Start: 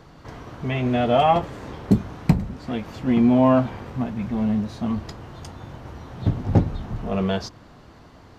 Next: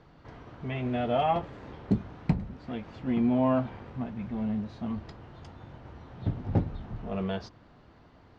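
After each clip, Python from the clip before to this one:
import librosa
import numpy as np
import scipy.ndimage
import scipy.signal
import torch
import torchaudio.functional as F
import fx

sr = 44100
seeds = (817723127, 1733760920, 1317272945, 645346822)

y = scipy.signal.sosfilt(scipy.signal.butter(2, 4000.0, 'lowpass', fs=sr, output='sos'), x)
y = fx.notch(y, sr, hz=1100.0, q=29.0)
y = F.gain(torch.from_numpy(y), -8.5).numpy()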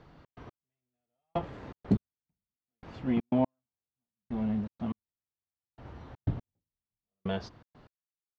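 y = fx.step_gate(x, sr, bpm=122, pattern='xx.x.......x', floor_db=-60.0, edge_ms=4.5)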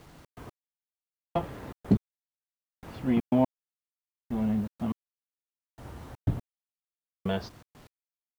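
y = fx.quant_dither(x, sr, seeds[0], bits=10, dither='none')
y = F.gain(torch.from_numpy(y), 3.0).numpy()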